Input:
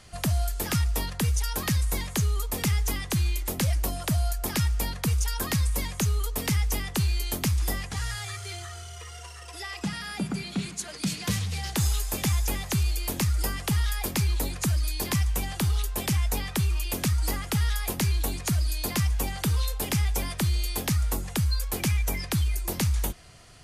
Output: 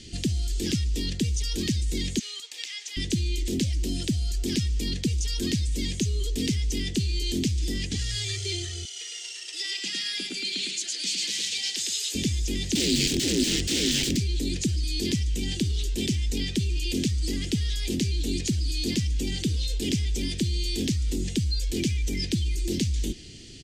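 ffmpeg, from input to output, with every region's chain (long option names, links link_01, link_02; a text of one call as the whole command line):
ffmpeg -i in.wav -filter_complex "[0:a]asettb=1/sr,asplit=3[link_01][link_02][link_03];[link_01]atrim=end=2.194[link_04];[link_02]atrim=start=2.19:end=2.97,asetpts=PTS-STARTPTS,afade=type=in:duration=0.004:curve=qsin,afade=type=out:start_time=0.776:duration=0.004:curve=qsin,highpass=frequency=810:width=0.5412,highpass=frequency=810:width=1.3066,acompressor=threshold=-38dB:ratio=12:attack=3.2:release=140:knee=1:detection=peak,asplit=2[link_05][link_06];[link_06]highpass=frequency=720:poles=1,volume=10dB,asoftclip=type=tanh:threshold=-17.5dB[link_07];[link_05][link_07]amix=inputs=2:normalize=0,lowpass=frequency=2600:poles=1,volume=-6dB[link_08];[link_03]atrim=start=2.966[link_09];[link_04][link_08]acrossfade=duration=0.004:curve1=hsin:curve2=qsin[link_10];[link_10][link_09]acrossfade=duration=0.004:curve1=qsin:curve2=hsin,asettb=1/sr,asplit=3[link_11][link_12][link_13];[link_11]atrim=end=8.854[link_14];[link_12]atrim=start=8.85:end=12.15,asetpts=PTS-STARTPTS,afade=type=in:duration=0.004:curve=qsin,afade=type=out:start_time=3.296:duration=0.004:curve=qsin,highpass=930,aecho=1:1:108:0.708,atrim=end_sample=145530[link_15];[link_13]atrim=start=12.146[link_16];[link_14][link_15]acrossfade=duration=0.004:curve1=hsin:curve2=qsin[link_17];[link_17][link_16]acrossfade=duration=0.004:curve1=qsin:curve2=hsin,asettb=1/sr,asplit=3[link_18][link_19][link_20];[link_18]atrim=end=12.754[link_21];[link_19]atrim=start=12.75:end=14.17,asetpts=PTS-STARTPTS,afade=type=in:duration=0.004:curve=qsin,afade=type=out:start_time=1.416:duration=0.004:curve=qsin,highshelf=frequency=3700:gain=-4,acontrast=36,aeval=exprs='(mod(15*val(0)+1,2)-1)/15':channel_layout=same[link_22];[link_20]atrim=start=14.166[link_23];[link_21][link_22]acrossfade=duration=0.004:curve1=hsin:curve2=qsin[link_24];[link_24][link_23]acrossfade=duration=0.004:curve1=qsin:curve2=hsin,alimiter=level_in=2.5dB:limit=-24dB:level=0:latency=1:release=15,volume=-2.5dB,firequalizer=gain_entry='entry(150,0);entry(240,9);entry(350,9);entry(620,-17);entry(1100,-27);entry(1800,-7);entry(3100,5);entry(7600,2);entry(11000,-14)':delay=0.05:min_phase=1,volume=5.5dB" out.wav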